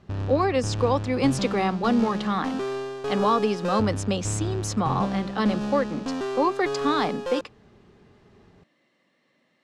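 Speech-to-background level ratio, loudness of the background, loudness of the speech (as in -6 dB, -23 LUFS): 4.5 dB, -30.5 LUFS, -26.0 LUFS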